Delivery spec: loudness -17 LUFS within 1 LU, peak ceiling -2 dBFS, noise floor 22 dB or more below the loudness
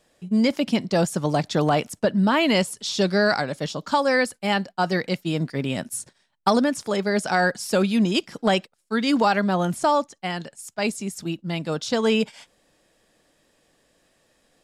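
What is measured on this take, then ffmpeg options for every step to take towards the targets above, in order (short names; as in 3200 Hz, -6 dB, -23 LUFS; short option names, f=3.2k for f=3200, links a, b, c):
loudness -23.0 LUFS; peak -6.5 dBFS; loudness target -17.0 LUFS
-> -af "volume=6dB,alimiter=limit=-2dB:level=0:latency=1"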